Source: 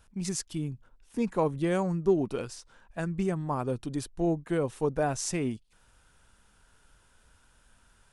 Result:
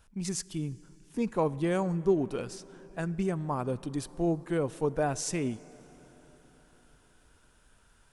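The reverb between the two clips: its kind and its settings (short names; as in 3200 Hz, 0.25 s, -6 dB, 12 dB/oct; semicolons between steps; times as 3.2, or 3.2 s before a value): plate-style reverb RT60 4.9 s, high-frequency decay 0.6×, DRR 18.5 dB; gain -1 dB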